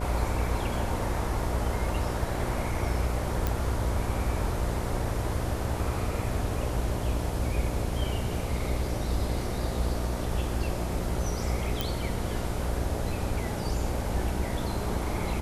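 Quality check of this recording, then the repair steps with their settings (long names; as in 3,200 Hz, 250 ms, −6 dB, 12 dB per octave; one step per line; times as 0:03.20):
mains buzz 60 Hz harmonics 12 −33 dBFS
0:03.47: click
0:11.81: click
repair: click removal
hum removal 60 Hz, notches 12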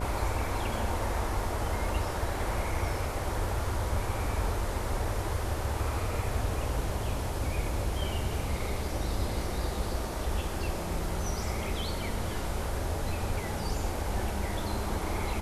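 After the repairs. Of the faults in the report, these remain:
none of them is left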